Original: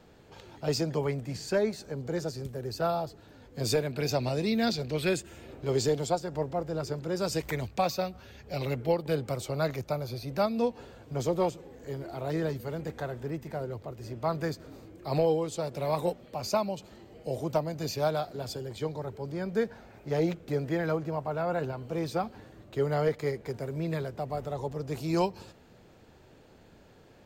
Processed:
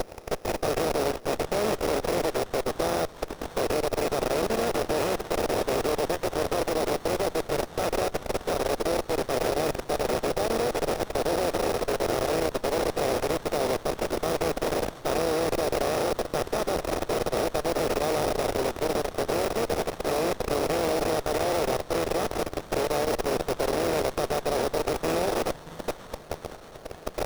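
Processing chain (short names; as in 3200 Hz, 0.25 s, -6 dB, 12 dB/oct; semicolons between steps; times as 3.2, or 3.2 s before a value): per-bin compression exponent 0.2; limiter -12 dBFS, peak gain reduction 6 dB; sample-rate reducer 5000 Hz, jitter 0%; bell 160 Hz -14 dB 1.1 oct; level quantiser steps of 24 dB; notch comb 1000 Hz; on a send: delay with a stepping band-pass 0.63 s, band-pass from 3200 Hz, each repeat 0.7 oct, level -4.5 dB; on the sum: running maximum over 17 samples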